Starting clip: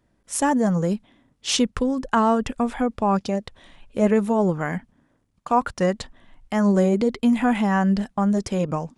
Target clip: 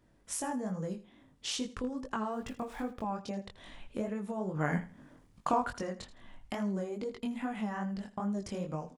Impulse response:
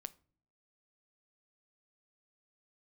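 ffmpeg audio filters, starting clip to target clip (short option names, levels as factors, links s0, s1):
-filter_complex "[0:a]asettb=1/sr,asplit=3[s0][s1][s2];[s0]atrim=end=2.314[s3];[s1]atrim=start=2.31:end=3.02,asetpts=PTS-STARTPTS,afade=t=in:d=0.004:c=qsin,afade=t=out:st=0.706:d=0.004:c=qsin,aeval=exprs='val(0)*gte(abs(val(0)),0.01)':c=same[s4];[s2]atrim=start=3.016[s5];[s3][s4]acrossfade=d=0.004:c1=hsin:c2=qsin[s6];[s6][s5]acrossfade=d=0.004:c1=qsin:c2=hsin,acompressor=threshold=0.0158:ratio=4,flanger=delay=19:depth=5.1:speed=2.4,asplit=3[s7][s8][s9];[s7]afade=t=out:st=4.54:d=0.02[s10];[s8]acontrast=84,afade=t=in:st=4.54:d=0.02,afade=t=out:st=5.73:d=0.02[s11];[s9]afade=t=in:st=5.73:d=0.02[s12];[s10][s11][s12]amix=inputs=3:normalize=0,asplit=2[s13][s14];[s14]aecho=0:1:81|162:0.158|0.0365[s15];[s13][s15]amix=inputs=2:normalize=0,volume=1.33"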